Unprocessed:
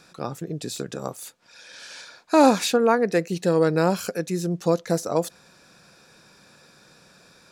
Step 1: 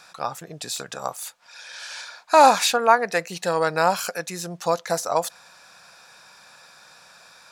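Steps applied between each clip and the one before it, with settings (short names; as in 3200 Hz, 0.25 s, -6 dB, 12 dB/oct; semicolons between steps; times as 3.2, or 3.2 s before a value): resonant low shelf 530 Hz -12.5 dB, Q 1.5; gain +4.5 dB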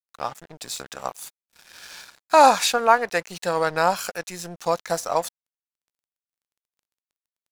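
crossover distortion -39.5 dBFS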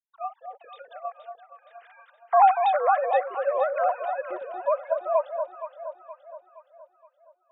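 sine-wave speech; tilt shelf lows +7 dB; on a send: echo with dull and thin repeats by turns 0.235 s, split 970 Hz, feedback 68%, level -5.5 dB; on the sum: gain -5 dB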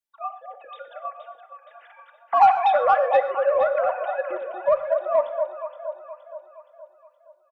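comb 3.5 ms, depth 55%; in parallel at -5 dB: soft clip -17 dBFS, distortion -11 dB; on the sum: non-linear reverb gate 0.16 s flat, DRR 10.5 dB; gain -1.5 dB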